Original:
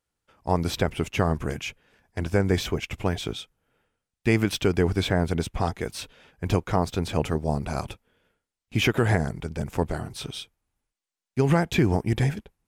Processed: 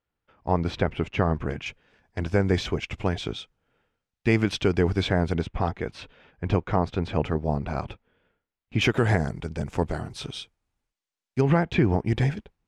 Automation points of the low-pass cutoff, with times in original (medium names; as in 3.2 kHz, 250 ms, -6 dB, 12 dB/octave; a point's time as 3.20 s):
3 kHz
from 1.66 s 5.5 kHz
from 5.41 s 3 kHz
from 8.81 s 7.2 kHz
from 11.41 s 3.1 kHz
from 12.05 s 5.2 kHz